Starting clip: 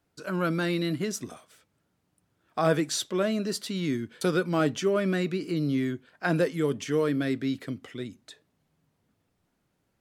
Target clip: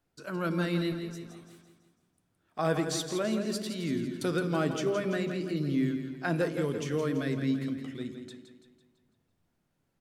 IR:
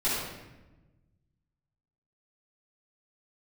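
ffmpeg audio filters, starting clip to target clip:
-filter_complex "[0:a]asettb=1/sr,asplit=3[link_01][link_02][link_03];[link_01]atrim=end=0.924[link_04];[link_02]atrim=start=0.92:end=2.59,asetpts=PTS-STARTPTS,afade=type=in:duration=0.004:curve=qsin,afade=type=out:start_time=1.666:duration=0.004:curve=qsin,acompressor=threshold=-43dB:ratio=6[link_05];[link_03]atrim=start=2.586[link_06];[link_04][link_05]acrossfade=duration=0.004:curve1=hsin:curve2=qsin[link_07];[link_07][link_06]acrossfade=duration=0.004:curve1=qsin:curve2=hsin,aecho=1:1:167|334|501|668|835|1002:0.355|0.177|0.0887|0.0444|0.0222|0.0111,asplit=2[link_08][link_09];[1:a]atrim=start_sample=2205,afade=type=out:start_time=0.35:duration=0.01,atrim=end_sample=15876,lowshelf=frequency=360:gain=11[link_10];[link_09][link_10]afir=irnorm=-1:irlink=0,volume=-24dB[link_11];[link_08][link_11]amix=inputs=2:normalize=0,volume=-5dB"

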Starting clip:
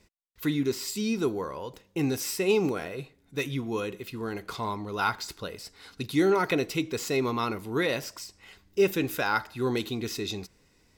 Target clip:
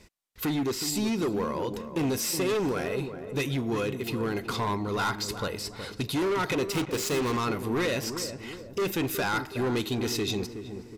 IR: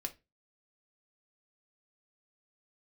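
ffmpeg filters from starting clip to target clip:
-filter_complex "[0:a]asplit=2[link_01][link_02];[link_02]acompressor=threshold=-37dB:ratio=6,volume=3dB[link_03];[link_01][link_03]amix=inputs=2:normalize=0,asoftclip=type=hard:threshold=-24.5dB,aresample=32000,aresample=44100,asettb=1/sr,asplit=3[link_04][link_05][link_06];[link_04]atrim=end=6.724[link_07];[link_05]atrim=start=6.72:end=7.37,asetpts=PTS-STARTPTS,afade=type=in:duration=0.004:curve=qsin,afade=type=out:start_time=0.646:duration=0.004:curve=qsin,aeval=exprs='0.075*(cos(1*acos(clip(val(0)/0.075,-1,1)))-cos(1*PI/2))+0.015*(cos(7*acos(clip(val(0)/0.075,-1,1)))-cos(7*PI/2))':channel_layout=same[link_08];[link_06]atrim=start=7.366[link_09];[link_07][link_08]acrossfade=duration=0.004:curve1=hsin:curve2=qsin[link_10];[link_10][link_09]acrossfade=duration=0.004:curve1=qsin:curve2=hsin,asplit=2[link_11][link_12];[link_12]adelay=369,lowpass=frequency=870:poles=1,volume=-8dB,asplit=2[link_13][link_14];[link_14]adelay=369,lowpass=frequency=870:poles=1,volume=0.53,asplit=2[link_15][link_16];[link_16]adelay=369,lowpass=frequency=870:poles=1,volume=0.53,asplit=2[link_17][link_18];[link_18]adelay=369,lowpass=frequency=870:poles=1,volume=0.53,asplit=2[link_19][link_20];[link_20]adelay=369,lowpass=frequency=870:poles=1,volume=0.53,asplit=2[link_21][link_22];[link_22]adelay=369,lowpass=frequency=870:poles=1,volume=0.53[link_23];[link_11][link_13][link_15][link_17][link_19][link_21][link_23]amix=inputs=7:normalize=0"

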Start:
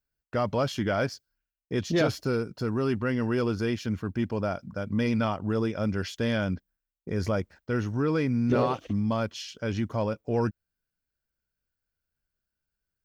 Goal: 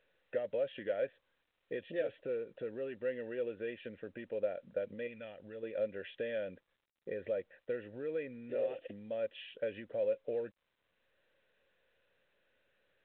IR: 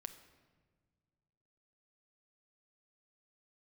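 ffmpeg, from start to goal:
-filter_complex "[0:a]acompressor=threshold=-31dB:ratio=12,asettb=1/sr,asplit=3[link_01][link_02][link_03];[link_01]atrim=end=5.074[link_04];[link_02]atrim=start=5.07:end=5.63,asetpts=PTS-STARTPTS,afade=type=in:duration=0.004:curve=qsin,afade=type=out:start_time=0.556:duration=0.004:curve=qsin,equalizer=frequency=520:width_type=o:width=2.4:gain=-8.5[link_05];[link_03]atrim=start=5.626[link_06];[link_04][link_05]acrossfade=duration=0.004:curve1=hsin:curve2=qsin[link_07];[link_07][link_06]acrossfade=duration=0.004:curve1=qsin:curve2=hsin,acompressor=mode=upward:threshold=-55dB:ratio=2.5,asplit=3[link_08][link_09][link_10];[link_08]bandpass=frequency=530:width_type=q:width=8,volume=0dB[link_11];[link_09]bandpass=frequency=1840:width_type=q:width=8,volume=-6dB[link_12];[link_10]bandpass=frequency=2480:width_type=q:width=8,volume=-9dB[link_13];[link_11][link_12][link_13]amix=inputs=3:normalize=0,volume=8dB" -ar 8000 -c:a pcm_mulaw

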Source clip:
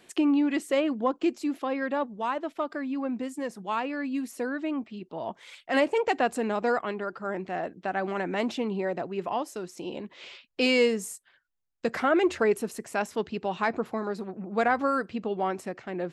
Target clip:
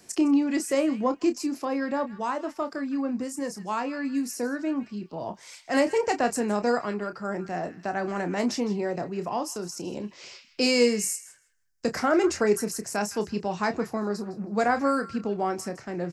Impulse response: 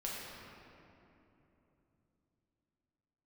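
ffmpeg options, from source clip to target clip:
-filter_complex "[0:a]highshelf=frequency=4300:width_type=q:width=3:gain=7,asplit=2[link_01][link_02];[link_02]adelay=29,volume=-9dB[link_03];[link_01][link_03]amix=inputs=2:normalize=0,acrossover=split=200|1300[link_04][link_05][link_06];[link_04]acontrast=64[link_07];[link_06]asplit=2[link_08][link_09];[link_09]adelay=160,lowpass=frequency=2800:poles=1,volume=-9.5dB,asplit=2[link_10][link_11];[link_11]adelay=160,lowpass=frequency=2800:poles=1,volume=0.32,asplit=2[link_12][link_13];[link_13]adelay=160,lowpass=frequency=2800:poles=1,volume=0.32,asplit=2[link_14][link_15];[link_15]adelay=160,lowpass=frequency=2800:poles=1,volume=0.32[link_16];[link_08][link_10][link_12][link_14][link_16]amix=inputs=5:normalize=0[link_17];[link_07][link_05][link_17]amix=inputs=3:normalize=0"

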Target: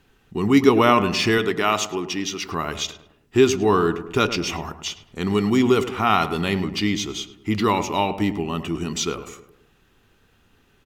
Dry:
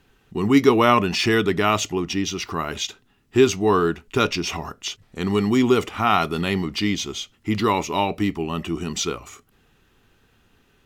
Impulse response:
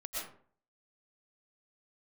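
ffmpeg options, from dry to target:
-filter_complex "[0:a]asettb=1/sr,asplit=3[link_01][link_02][link_03];[link_01]atrim=end=1.384[link_04];[link_02]atrim=start=1.38:end=2.45,asetpts=PTS-STARTPTS,afade=type=in:duration=0.004:curve=qsin,afade=type=out:start_time=1.066:duration=0.004:curve=qsin,highpass=frequency=310:poles=1[link_05];[link_03]atrim=start=2.446[link_06];[link_04][link_05]acrossfade=duration=0.004:curve1=hsin:curve2=qsin[link_07];[link_07][link_06]acrossfade=duration=0.004:curve1=qsin:curve2=hsin,asplit=2[link_08][link_09];[link_09]adelay=105,lowpass=frequency=1500:poles=1,volume=-11dB,asplit=2[link_10][link_11];[link_11]adelay=105,lowpass=frequency=1500:poles=1,volume=0.51,asplit=2[link_12][link_13];[link_13]adelay=105,lowpass=frequency=1500:poles=1,volume=0.51,asplit=2[link_14][link_15];[link_15]adelay=105,lowpass=frequency=1500:poles=1,volume=0.51,asplit=2[link_16][link_17];[link_17]adelay=105,lowpass=frequency=1500:poles=1,volume=0.51[link_18];[link_08][link_10][link_12][link_14][link_16][link_18]amix=inputs=6:normalize=0"

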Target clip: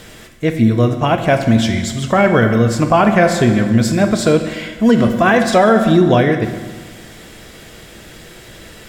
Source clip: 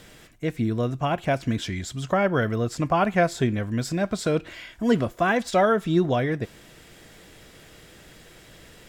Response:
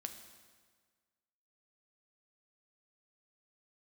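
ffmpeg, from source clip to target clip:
-filter_complex "[1:a]atrim=start_sample=2205[link_01];[0:a][link_01]afir=irnorm=-1:irlink=0,alimiter=level_in=15dB:limit=-1dB:release=50:level=0:latency=1,volume=-1dB"

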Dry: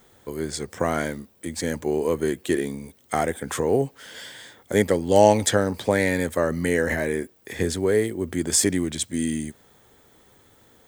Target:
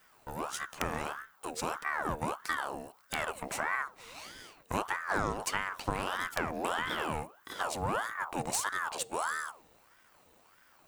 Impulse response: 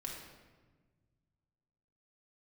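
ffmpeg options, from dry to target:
-filter_complex "[0:a]aeval=exprs='if(lt(val(0),0),0.447*val(0),val(0))':channel_layout=same,acompressor=threshold=-24dB:ratio=4,aeval=exprs='(mod(3.76*val(0)+1,2)-1)/3.76':channel_layout=same,asplit=2[link_01][link_02];[1:a]atrim=start_sample=2205,afade=type=out:start_time=0.3:duration=0.01,atrim=end_sample=13671[link_03];[link_02][link_03]afir=irnorm=-1:irlink=0,volume=-18.5dB[link_04];[link_01][link_04]amix=inputs=2:normalize=0,aeval=exprs='val(0)*sin(2*PI*1000*n/s+1000*0.55/1.6*sin(2*PI*1.6*n/s))':channel_layout=same,volume=-3dB"

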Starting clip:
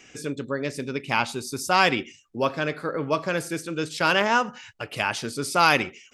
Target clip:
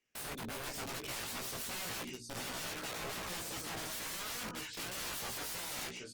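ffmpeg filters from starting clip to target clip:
ffmpeg -i in.wav -filter_complex "[0:a]asettb=1/sr,asplit=3[link_01][link_02][link_03];[link_01]atrim=end=1.304[link_04];[link_02]atrim=start=1.3:end=3.9,asetpts=PTS-STARTPTS,afade=type=in:duration=0.004:curve=qsin,afade=type=out:start_time=2.596:duration=0.004:curve=qsin,equalizer=frequency=170:width_type=o:width=1.3:gain=6[link_05];[link_03]atrim=start=3.896[link_06];[link_04][link_05]acrossfade=duration=0.004:curve1=hsin:curve2=qsin[link_07];[link_07][link_06]acrossfade=duration=0.004:curve1=qsin:curve2=hsin,agate=range=-39dB:threshold=-43dB:ratio=16:detection=peak,aecho=1:1:768:0.119,asubboost=boost=4:cutoff=57,asoftclip=type=tanh:threshold=-21dB,bandreject=frequency=60:width_type=h:width=6,bandreject=frequency=120:width_type=h:width=6,bandreject=frequency=180:width_type=h:width=6,bandreject=frequency=240:width_type=h:width=6,bandreject=frequency=300:width_type=h:width=6,aresample=22050,aresample=44100,bandreject=frequency=760:width=12,acompressor=threshold=-46dB:ratio=3,aeval=exprs='(mod(158*val(0)+1,2)-1)/158':channel_layout=same,flanger=delay=15.5:depth=2.5:speed=2.8,volume=11dB" -ar 48000 -c:a libopus -b:a 32k out.opus

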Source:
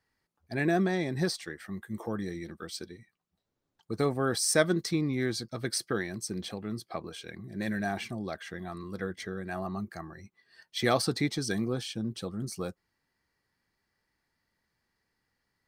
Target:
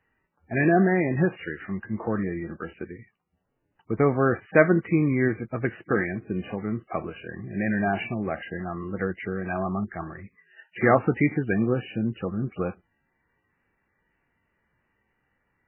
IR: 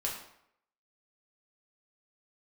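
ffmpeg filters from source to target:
-af "volume=7.5dB" -ar 8000 -c:a libmp3lame -b:a 8k

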